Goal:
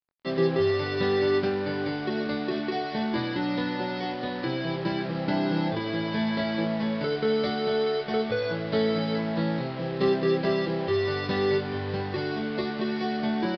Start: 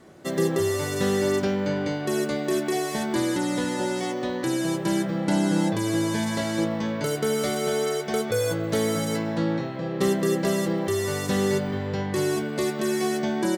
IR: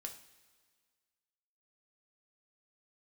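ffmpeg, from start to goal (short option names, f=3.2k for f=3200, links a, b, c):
-filter_complex "[0:a]acrusher=bits=5:mix=0:aa=0.5,asplit=2[a][b];[b]adelay=23,volume=-6dB[c];[a][c]amix=inputs=2:normalize=0,aresample=11025,aresample=44100,volume=-2.5dB"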